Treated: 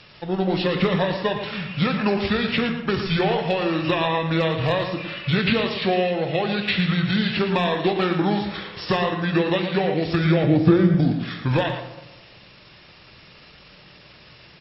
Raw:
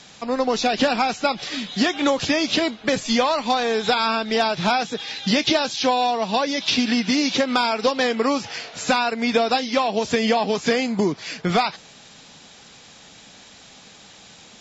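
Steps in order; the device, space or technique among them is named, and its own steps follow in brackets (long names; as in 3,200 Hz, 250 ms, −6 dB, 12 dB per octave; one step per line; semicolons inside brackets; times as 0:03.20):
0:10.43–0:10.94: tilt shelving filter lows +8.5 dB, about 1,300 Hz
monster voice (pitch shifter −5.5 semitones; low-shelf EQ 140 Hz +5.5 dB; single-tap delay 112 ms −9 dB; convolution reverb RT60 1.1 s, pre-delay 12 ms, DRR 7 dB)
level −3 dB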